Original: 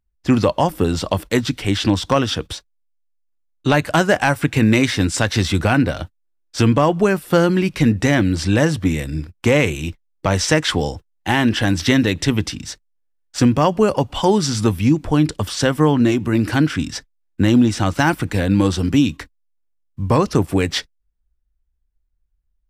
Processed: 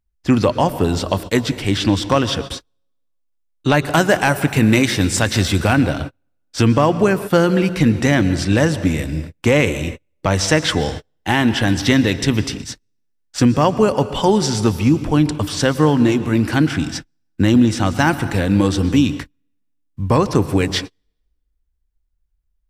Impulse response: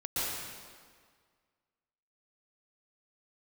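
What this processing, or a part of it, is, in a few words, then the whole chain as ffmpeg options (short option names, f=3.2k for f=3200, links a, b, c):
keyed gated reverb: -filter_complex "[0:a]asettb=1/sr,asplit=3[a][b][c];[a]atrim=end=3.904[d];[b]atrim=start=3.9:end=5.74,asetpts=PTS-STARTPTS,afade=t=in:d=0.004:c=qsin,afade=t=out:st=1.836:d=0.004:c=qsin,highshelf=f=11k:g=10.5[e];[c]atrim=start=5.736[f];[d][e]acrossfade=d=0.004:c1=hsin:c2=qsin[g];[g][f]acrossfade=d=0.004:c1=qsin:c2=hsin,asplit=3[h][i][j];[1:a]atrim=start_sample=2205[k];[i][k]afir=irnorm=-1:irlink=0[l];[j]apad=whole_len=1001000[m];[l][m]sidechaingate=range=-42dB:threshold=-29dB:ratio=16:detection=peak,volume=-18.5dB[n];[h][n]amix=inputs=2:normalize=0"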